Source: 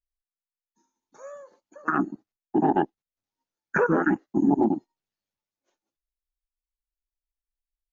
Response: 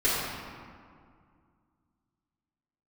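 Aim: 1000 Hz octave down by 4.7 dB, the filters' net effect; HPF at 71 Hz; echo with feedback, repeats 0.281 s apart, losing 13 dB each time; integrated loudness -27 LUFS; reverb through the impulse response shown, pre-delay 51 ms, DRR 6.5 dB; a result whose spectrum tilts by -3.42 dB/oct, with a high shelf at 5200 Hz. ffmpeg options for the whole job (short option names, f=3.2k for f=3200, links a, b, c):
-filter_complex "[0:a]highpass=71,equalizer=f=1k:t=o:g=-7,highshelf=f=5.2k:g=9,aecho=1:1:281|562|843:0.224|0.0493|0.0108,asplit=2[a][b];[1:a]atrim=start_sample=2205,adelay=51[c];[b][c]afir=irnorm=-1:irlink=0,volume=-20.5dB[d];[a][d]amix=inputs=2:normalize=0,volume=-0.5dB"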